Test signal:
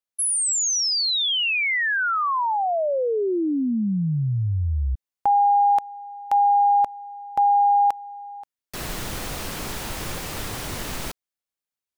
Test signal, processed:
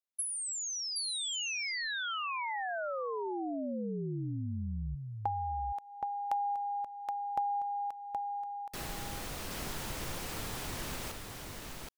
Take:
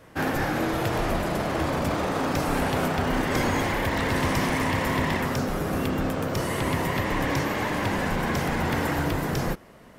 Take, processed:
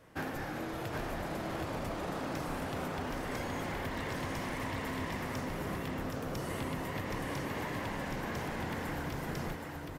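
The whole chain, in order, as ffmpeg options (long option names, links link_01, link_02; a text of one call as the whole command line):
ffmpeg -i in.wav -filter_complex "[0:a]acompressor=threshold=-29dB:ratio=5:attack=64:release=426:detection=peak,asplit=2[link_01][link_02];[link_02]aecho=0:1:772:0.631[link_03];[link_01][link_03]amix=inputs=2:normalize=0,volume=-8.5dB" out.wav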